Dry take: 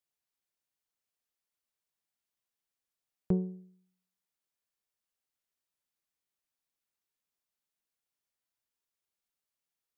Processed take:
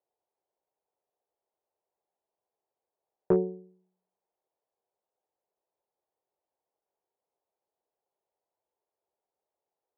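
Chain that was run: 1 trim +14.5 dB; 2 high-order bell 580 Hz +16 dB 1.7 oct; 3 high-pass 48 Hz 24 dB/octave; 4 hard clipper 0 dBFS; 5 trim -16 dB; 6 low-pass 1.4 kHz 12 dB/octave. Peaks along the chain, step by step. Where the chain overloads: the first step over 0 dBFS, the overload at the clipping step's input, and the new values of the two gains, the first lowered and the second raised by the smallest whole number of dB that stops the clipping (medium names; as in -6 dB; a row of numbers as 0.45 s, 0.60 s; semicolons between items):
-3.0 dBFS, +5.5 dBFS, +5.0 dBFS, 0.0 dBFS, -16.0 dBFS, -15.5 dBFS; step 2, 5.0 dB; step 1 +9.5 dB, step 5 -11 dB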